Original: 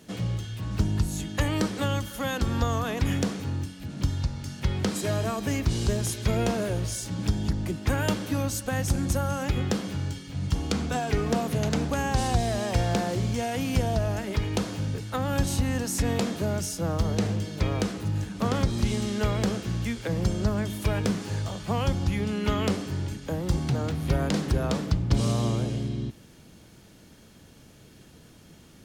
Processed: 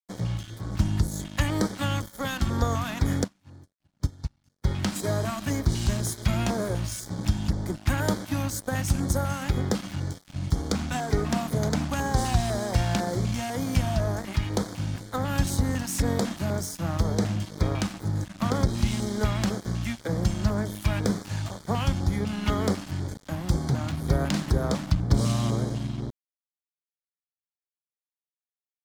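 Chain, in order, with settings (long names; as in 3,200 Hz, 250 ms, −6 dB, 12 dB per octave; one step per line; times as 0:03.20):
dead-zone distortion −37.5 dBFS
auto-filter notch square 2 Hz 450–2,700 Hz
0:03.24–0:04.66: expander for the loud parts 2.5 to 1, over −41 dBFS
level +2.5 dB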